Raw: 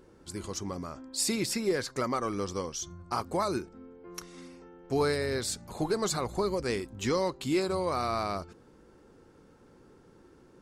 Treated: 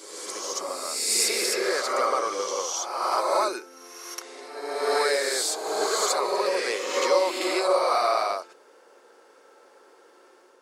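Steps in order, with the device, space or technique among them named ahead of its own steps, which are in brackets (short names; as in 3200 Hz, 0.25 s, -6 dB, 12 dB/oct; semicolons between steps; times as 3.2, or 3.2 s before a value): ghost voice (reverse; reverb RT60 1.5 s, pre-delay 42 ms, DRR -2 dB; reverse; HPF 470 Hz 24 dB/oct); gain +5 dB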